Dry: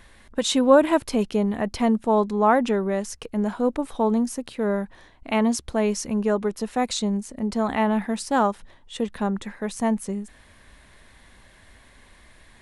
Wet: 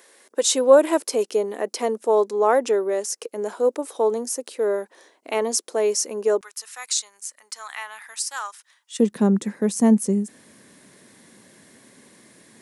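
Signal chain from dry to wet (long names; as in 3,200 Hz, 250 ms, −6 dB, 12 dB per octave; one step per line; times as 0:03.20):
high-pass filter 420 Hz 24 dB per octave, from 0:06.41 1,200 Hz, from 0:08.99 160 Hz
flat-topped bell 1,600 Hz −10.5 dB 3 octaves
level +8.5 dB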